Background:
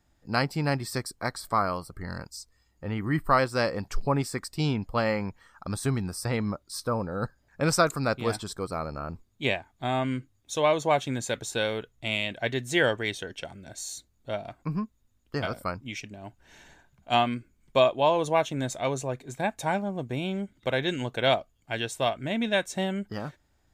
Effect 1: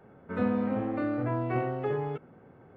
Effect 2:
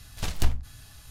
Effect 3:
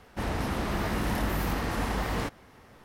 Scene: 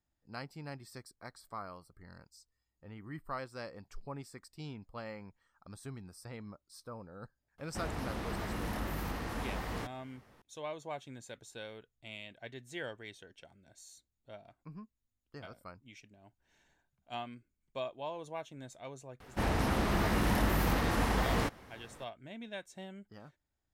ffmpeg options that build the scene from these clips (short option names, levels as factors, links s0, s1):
-filter_complex "[3:a]asplit=2[s0][s1];[0:a]volume=0.126[s2];[s0]atrim=end=2.84,asetpts=PTS-STARTPTS,volume=0.376,afade=t=in:d=0.004:c=hsin,afade=t=out:st=2.836:d=0.004:c=hsin,adelay=7580[s3];[s1]atrim=end=2.84,asetpts=PTS-STARTPTS,volume=0.944,afade=t=in:d=0.004:c=hsin,afade=t=out:st=2.836:d=0.004:c=hsin,adelay=19200[s4];[s2][s3][s4]amix=inputs=3:normalize=0"